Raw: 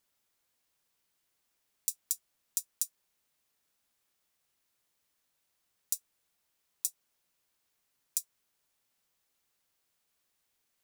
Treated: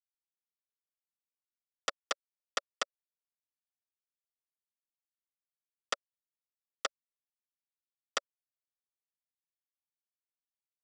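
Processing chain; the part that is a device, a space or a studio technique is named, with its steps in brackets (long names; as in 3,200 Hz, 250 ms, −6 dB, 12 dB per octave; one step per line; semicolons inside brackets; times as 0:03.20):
hand-held game console (bit reduction 4 bits; loudspeaker in its box 460–4,400 Hz, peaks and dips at 570 Hz +9 dB, 880 Hz −7 dB, 1,300 Hz +7 dB, 2,300 Hz −7 dB, 4,100 Hz −7 dB)
level +10.5 dB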